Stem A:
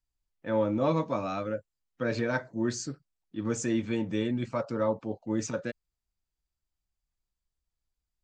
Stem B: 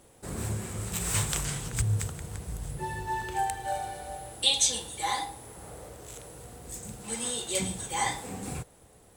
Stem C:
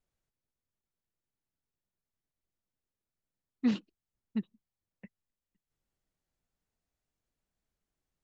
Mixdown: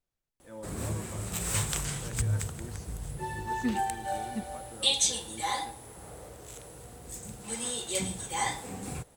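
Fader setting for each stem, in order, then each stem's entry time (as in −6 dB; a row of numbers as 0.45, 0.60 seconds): −17.5, −1.5, −2.5 decibels; 0.00, 0.40, 0.00 seconds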